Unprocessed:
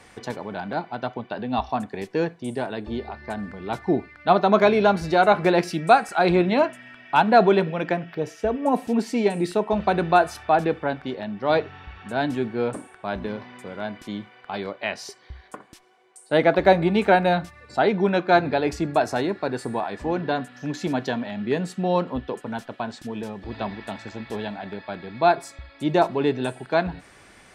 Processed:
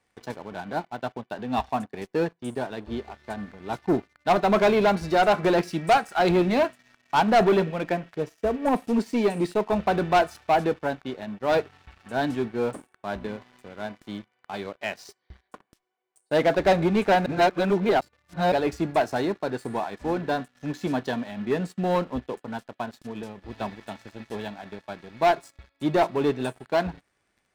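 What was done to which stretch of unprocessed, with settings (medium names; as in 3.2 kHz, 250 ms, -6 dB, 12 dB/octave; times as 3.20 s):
17.26–18.52 s: reverse
whole clip: waveshaping leveller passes 3; upward expansion 1.5:1, over -24 dBFS; trim -8.5 dB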